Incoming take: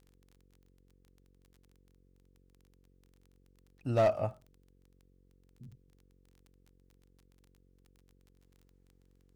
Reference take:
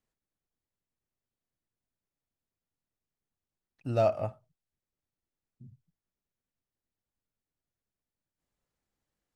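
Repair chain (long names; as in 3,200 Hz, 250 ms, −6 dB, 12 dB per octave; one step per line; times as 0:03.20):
clipped peaks rebuilt −20.5 dBFS
click removal
hum removal 45.9 Hz, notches 11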